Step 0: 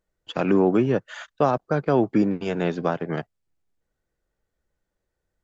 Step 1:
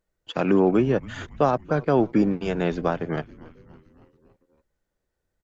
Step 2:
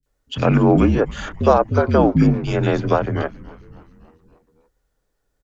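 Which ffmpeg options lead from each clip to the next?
ffmpeg -i in.wav -filter_complex "[0:a]asplit=6[link_01][link_02][link_03][link_04][link_05][link_06];[link_02]adelay=280,afreqshift=-140,volume=-20.5dB[link_07];[link_03]adelay=560,afreqshift=-280,volume=-24.7dB[link_08];[link_04]adelay=840,afreqshift=-420,volume=-28.8dB[link_09];[link_05]adelay=1120,afreqshift=-560,volume=-33dB[link_10];[link_06]adelay=1400,afreqshift=-700,volume=-37.1dB[link_11];[link_01][link_07][link_08][link_09][link_10][link_11]amix=inputs=6:normalize=0" out.wav
ffmpeg -i in.wav -filter_complex "[0:a]bandreject=frequency=400:width=12,acrossover=split=300|2300[link_01][link_02][link_03];[link_03]adelay=30[link_04];[link_02]adelay=60[link_05];[link_01][link_05][link_04]amix=inputs=3:normalize=0,afreqshift=-53,volume=8dB" out.wav

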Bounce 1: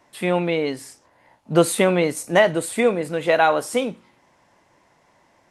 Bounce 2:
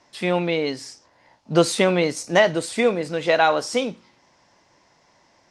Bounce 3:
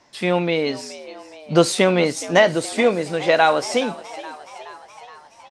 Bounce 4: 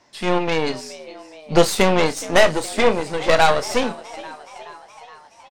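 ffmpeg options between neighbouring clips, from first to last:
ffmpeg -i in.wav -af "lowpass=6900,equalizer=frequency=5300:width_type=o:width=0.88:gain=11,volume=-1dB" out.wav
ffmpeg -i in.wav -filter_complex "[0:a]asplit=7[link_01][link_02][link_03][link_04][link_05][link_06][link_07];[link_02]adelay=421,afreqshift=74,volume=-17dB[link_08];[link_03]adelay=842,afreqshift=148,volume=-20.9dB[link_09];[link_04]adelay=1263,afreqshift=222,volume=-24.8dB[link_10];[link_05]adelay=1684,afreqshift=296,volume=-28.6dB[link_11];[link_06]adelay=2105,afreqshift=370,volume=-32.5dB[link_12];[link_07]adelay=2526,afreqshift=444,volume=-36.4dB[link_13];[link_01][link_08][link_09][link_10][link_11][link_12][link_13]amix=inputs=7:normalize=0,volume=2dB" out.wav
ffmpeg -i in.wav -filter_complex "[0:a]aeval=exprs='0.891*(cos(1*acos(clip(val(0)/0.891,-1,1)))-cos(1*PI/2))+0.126*(cos(8*acos(clip(val(0)/0.891,-1,1)))-cos(8*PI/2))':channel_layout=same,asplit=2[link_01][link_02];[link_02]adelay=31,volume=-11.5dB[link_03];[link_01][link_03]amix=inputs=2:normalize=0,volume=-1dB" out.wav

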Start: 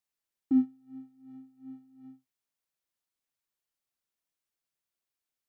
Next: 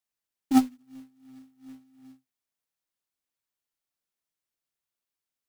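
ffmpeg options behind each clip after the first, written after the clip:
ffmpeg -i in.wav -af "bandreject=frequency=50:width_type=h:width=6,bandreject=frequency=100:width_type=h:width=6,bandreject=frequency=150:width_type=h:width=6,bandreject=frequency=200:width_type=h:width=6,bandreject=frequency=250:width_type=h:width=6,aeval=exprs='0.133*(cos(1*acos(clip(val(0)/0.133,-1,1)))-cos(1*PI/2))+0.0422*(cos(3*acos(clip(val(0)/0.133,-1,1)))-cos(3*PI/2))+0.000841*(cos(4*acos(clip(val(0)/0.133,-1,1)))-cos(4*PI/2))+0.00944*(cos(5*acos(clip(val(0)/0.133,-1,1)))-cos(5*PI/2))+0.00168*(cos(6*acos(clip(val(0)/0.133,-1,1)))-cos(6*PI/2))':channel_layout=same,acrusher=bits=4:mode=log:mix=0:aa=0.000001,volume=7dB" out.wav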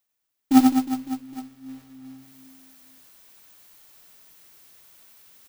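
ffmpeg -i in.wav -af "areverse,acompressor=mode=upward:threshold=-42dB:ratio=2.5,areverse,aexciter=amount=1.8:drive=1.4:freq=12000,aecho=1:1:90|207|359.1|556.8|813.9:0.631|0.398|0.251|0.158|0.1,volume=5dB" out.wav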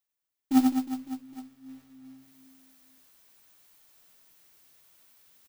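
ffmpeg -i in.wav -filter_complex "[0:a]asplit=2[link_01][link_02];[link_02]adelay=12,volume=-10.5dB[link_03];[link_01][link_03]amix=inputs=2:normalize=0,volume=-8dB" out.wav

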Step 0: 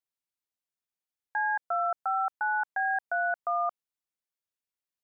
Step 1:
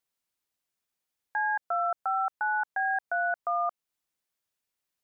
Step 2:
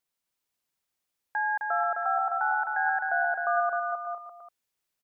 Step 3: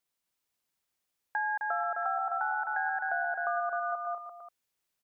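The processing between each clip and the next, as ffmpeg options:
ffmpeg -i in.wav -af "alimiter=level_in=4.5dB:limit=-24dB:level=0:latency=1:release=248,volume=-4.5dB,volume=7dB" out.wav
ffmpeg -i in.wav -af "aecho=1:1:260|455|601.2|710.9|793.2:0.631|0.398|0.251|0.158|0.1" out.wav
ffmpeg -i in.wav -af "acompressor=threshold=-28dB:ratio=6" out.wav

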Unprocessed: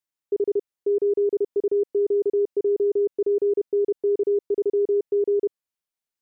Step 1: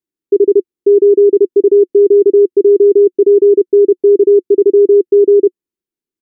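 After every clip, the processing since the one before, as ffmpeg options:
ffmpeg -i in.wav -af "firequalizer=gain_entry='entry(110,0);entry(360,14);entry(570,-9)':delay=0.05:min_phase=1,volume=5dB" out.wav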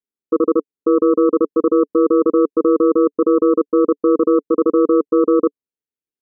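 ffmpeg -i in.wav -af "alimiter=limit=-6.5dB:level=0:latency=1:release=12,aeval=exprs='0.473*(cos(1*acos(clip(val(0)/0.473,-1,1)))-cos(1*PI/2))+0.0841*(cos(3*acos(clip(val(0)/0.473,-1,1)))-cos(3*PI/2))':channel_layout=same,aeval=exprs='val(0)*sin(2*PI*75*n/s)':channel_layout=same" out.wav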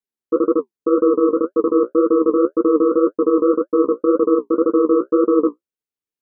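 ffmpeg -i in.wav -af "flanger=delay=7.9:depth=9.8:regen=35:speed=1.9:shape=triangular,volume=2.5dB" out.wav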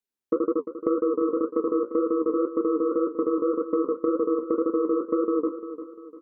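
ffmpeg -i in.wav -filter_complex "[0:a]acompressor=threshold=-21dB:ratio=5,asplit=2[link_01][link_02];[link_02]aecho=0:1:348|696|1044|1392:0.266|0.109|0.0447|0.0183[link_03];[link_01][link_03]amix=inputs=2:normalize=0" out.wav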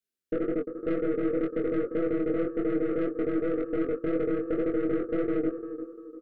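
ffmpeg -i in.wav -filter_complex "[0:a]aeval=exprs='(tanh(12.6*val(0)+0.4)-tanh(0.4))/12.6':channel_layout=same,asuperstop=centerf=930:order=8:qfactor=1.7,asplit=2[link_01][link_02];[link_02]adelay=22,volume=-4dB[link_03];[link_01][link_03]amix=inputs=2:normalize=0" out.wav

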